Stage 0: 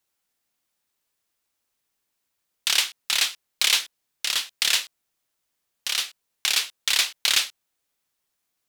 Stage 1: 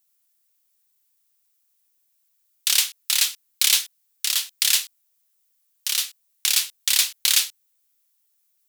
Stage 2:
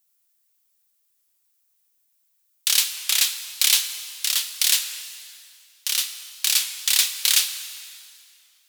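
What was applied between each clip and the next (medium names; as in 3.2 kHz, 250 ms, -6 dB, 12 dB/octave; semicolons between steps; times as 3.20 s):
RIAA curve recording; trim -6 dB
plate-style reverb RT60 2.4 s, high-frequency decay 0.9×, DRR 9 dB; warped record 33 1/3 rpm, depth 100 cents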